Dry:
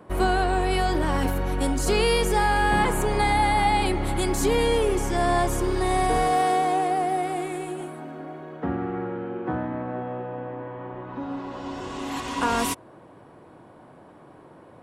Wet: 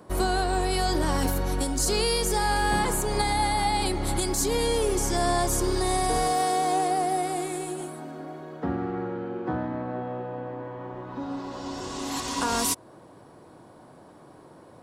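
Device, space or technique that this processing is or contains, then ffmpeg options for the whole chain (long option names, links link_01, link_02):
over-bright horn tweeter: -af "highshelf=frequency=3600:width_type=q:width=1.5:gain=7.5,alimiter=limit=-13dB:level=0:latency=1:release=254,volume=-1dB"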